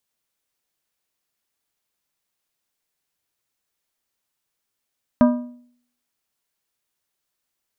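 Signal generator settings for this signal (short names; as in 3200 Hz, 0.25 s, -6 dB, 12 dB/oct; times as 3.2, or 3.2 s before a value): metal hit plate, lowest mode 244 Hz, modes 5, decay 0.60 s, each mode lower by 6 dB, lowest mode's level -8.5 dB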